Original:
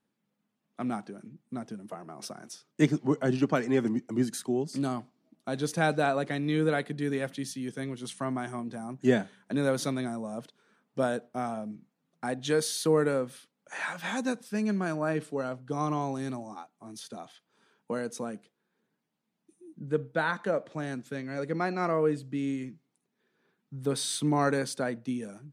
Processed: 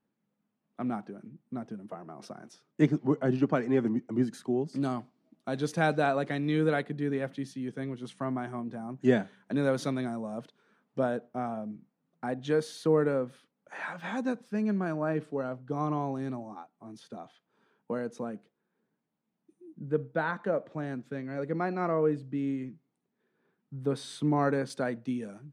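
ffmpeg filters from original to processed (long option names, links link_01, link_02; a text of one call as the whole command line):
ffmpeg -i in.wav -af "asetnsamples=nb_out_samples=441:pad=0,asendcmd='4.82 lowpass f 4000;6.82 lowpass f 1600;8.97 lowpass f 3100;10.99 lowpass f 1400;24.7 lowpass f 3500',lowpass=frequency=1600:poles=1" out.wav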